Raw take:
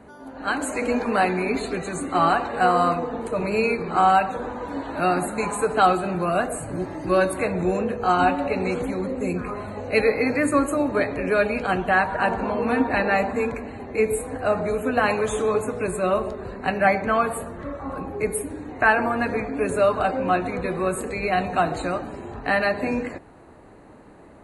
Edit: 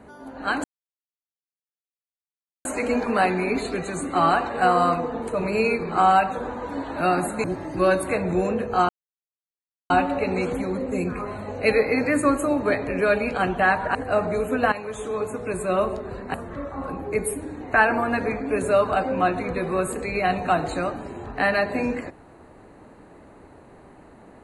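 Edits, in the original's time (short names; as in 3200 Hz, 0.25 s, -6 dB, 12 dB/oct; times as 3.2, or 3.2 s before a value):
0.64 insert silence 2.01 s
5.43–6.74 cut
8.19 insert silence 1.01 s
12.24–14.29 cut
15.06–16.17 fade in, from -12.5 dB
16.68–17.42 cut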